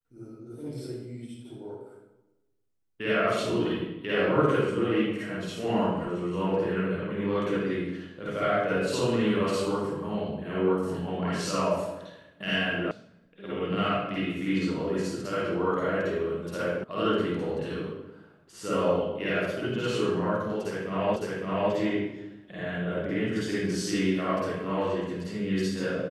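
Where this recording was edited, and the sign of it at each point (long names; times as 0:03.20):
0:12.91: cut off before it has died away
0:16.84: cut off before it has died away
0:21.16: the same again, the last 0.56 s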